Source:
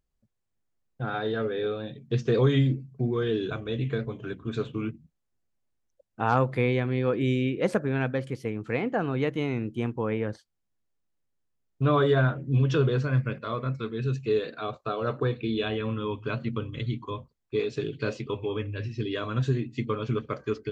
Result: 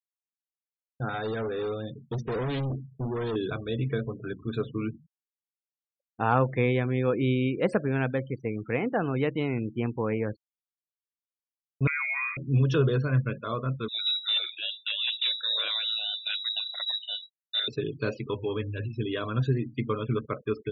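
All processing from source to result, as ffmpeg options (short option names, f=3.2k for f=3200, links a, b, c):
-filter_complex "[0:a]asettb=1/sr,asplit=3[a][b][c];[a]atrim=end=1.094[d];[b]atrim=start=1.09:end=3.36,asetpts=PTS-STARTPTS,afade=t=in:d=0.004:c=qsin,afade=t=out:st=2.266:d=0.004:c=qsin,equalizer=f=100:w=5.7:g=5,volume=28dB,asoftclip=hard,volume=-28dB[e];[c]atrim=start=3.356[f];[d][e]acrossfade=d=0.004:c1=hsin:c2=qsin[g];[g][f]acrossfade=d=0.004:c1=qsin:c2=hsin,asettb=1/sr,asplit=3[h][i][j];[h]atrim=end=11.874[k];[i]atrim=start=11.87:end=12.37,asetpts=PTS-STARTPTS,afade=t=in:d=0.004:c=qsin,afade=t=out:st=0.496:d=0.004:c=qsin,acompressor=threshold=-27dB:ratio=8:attack=3.2:release=140:knee=1:detection=peak,lowpass=f=2.2k:t=q:w=0.5098,lowpass=f=2.2k:t=q:w=0.6013,lowpass=f=2.2k:t=q:w=0.9,lowpass=f=2.2k:t=q:w=2.563,afreqshift=-2600[l];[j]atrim=start=12.366[m];[k][l]acrossfade=d=0.004:c1=hsin:c2=qsin[n];[n][m]acrossfade=d=0.004:c1=qsin:c2=hsin,asettb=1/sr,asplit=3[o][p][q];[o]atrim=end=13.884[r];[p]atrim=start=13.88:end=17.68,asetpts=PTS-STARTPTS,afade=t=in:d=0.004:c=qsin,afade=t=out:st=3.796:d=0.004:c=qsin,bandreject=f=60:t=h:w=6,bandreject=f=120:t=h:w=6,bandreject=f=180:t=h:w=6,bandreject=f=240:t=h:w=6,bandreject=f=300:t=h:w=6,bandreject=f=360:t=h:w=6,bandreject=f=420:t=h:w=6,aeval=exprs='0.0891*(abs(mod(val(0)/0.0891+3,4)-2)-1)':c=same,lowpass=f=3.4k:t=q:w=0.5098,lowpass=f=3.4k:t=q:w=0.6013,lowpass=f=3.4k:t=q:w=0.9,lowpass=f=3.4k:t=q:w=2.563,afreqshift=-4000[s];[q]atrim=start=17.676[t];[r][s]acrossfade=d=0.004:c1=hsin:c2=qsin[u];[u][t]acrossfade=d=0.004:c1=qsin:c2=hsin,afftfilt=real='re*gte(hypot(re,im),0.01)':imag='im*gte(hypot(re,im),0.01)':win_size=1024:overlap=0.75,agate=range=-33dB:threshold=-43dB:ratio=3:detection=peak"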